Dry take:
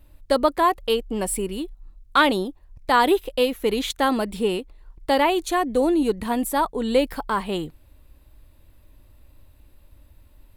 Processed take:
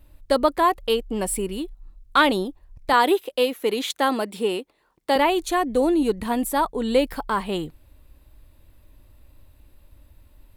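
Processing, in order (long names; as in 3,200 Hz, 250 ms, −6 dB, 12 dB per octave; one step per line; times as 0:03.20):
0:02.93–0:05.16: high-pass filter 250 Hz 12 dB per octave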